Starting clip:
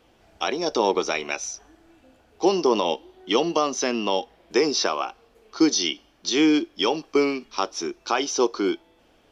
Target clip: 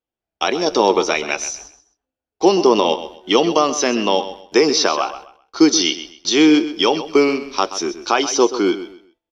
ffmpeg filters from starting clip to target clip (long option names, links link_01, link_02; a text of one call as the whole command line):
ffmpeg -i in.wav -af "agate=range=-38dB:threshold=-47dB:ratio=16:detection=peak,aecho=1:1:129|258|387:0.224|0.0582|0.0151,volume=6.5dB" out.wav